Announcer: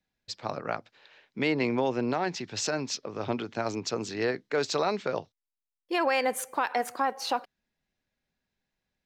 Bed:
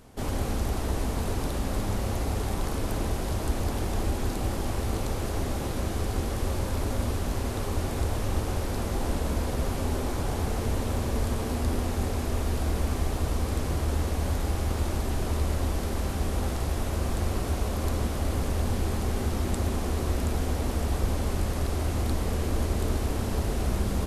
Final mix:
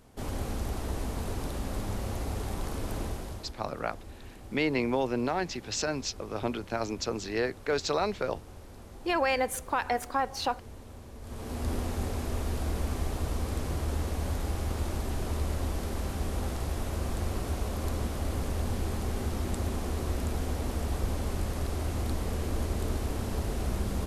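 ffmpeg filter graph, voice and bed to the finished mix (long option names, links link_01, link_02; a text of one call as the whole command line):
ffmpeg -i stem1.wav -i stem2.wav -filter_complex "[0:a]adelay=3150,volume=-1dB[link_01];[1:a]volume=9.5dB,afade=type=out:start_time=3.01:duration=0.53:silence=0.211349,afade=type=in:start_time=11.21:duration=0.5:silence=0.188365[link_02];[link_01][link_02]amix=inputs=2:normalize=0" out.wav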